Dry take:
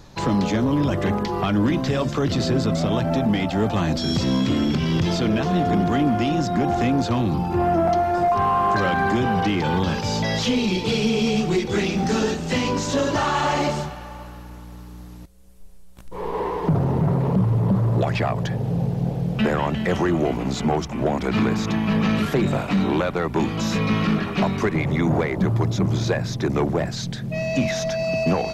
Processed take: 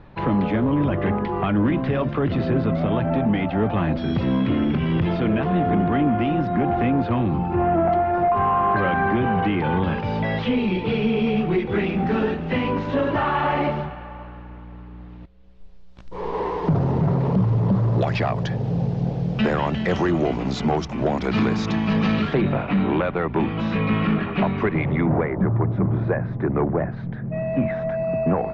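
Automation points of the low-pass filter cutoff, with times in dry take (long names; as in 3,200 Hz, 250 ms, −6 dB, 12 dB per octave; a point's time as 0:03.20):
low-pass filter 24 dB per octave
0:14.94 2,700 Hz
0:16.23 5,800 Hz
0:21.98 5,800 Hz
0:22.53 3,000 Hz
0:24.85 3,000 Hz
0:25.35 1,800 Hz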